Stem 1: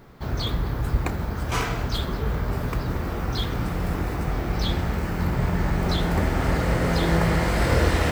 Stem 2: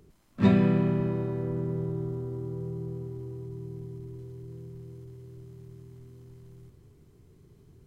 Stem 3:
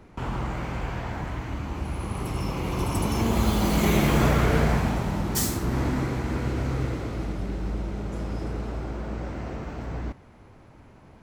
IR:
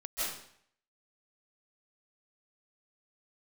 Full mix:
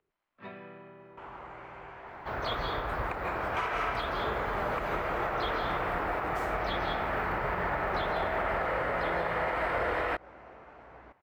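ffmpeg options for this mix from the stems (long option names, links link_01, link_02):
-filter_complex "[0:a]adynamicequalizer=threshold=0.00355:dfrequency=6300:dqfactor=0.97:tfrequency=6300:tqfactor=0.97:attack=5:release=100:ratio=0.375:range=3.5:mode=cutabove:tftype=bell,adelay=2050,volume=1dB,asplit=2[link_01][link_02];[link_02]volume=-4.5dB[link_03];[1:a]lowpass=4300,highshelf=frequency=2100:gain=8.5,volume=-13.5dB[link_04];[2:a]adelay=1000,volume=-8.5dB[link_05];[3:a]atrim=start_sample=2205[link_06];[link_03][link_06]afir=irnorm=-1:irlink=0[link_07];[link_01][link_04][link_05][link_07]amix=inputs=4:normalize=0,acrossover=split=480 2700:gain=0.112 1 0.1[link_08][link_09][link_10];[link_08][link_09][link_10]amix=inputs=3:normalize=0,alimiter=limit=-21.5dB:level=0:latency=1:release=140"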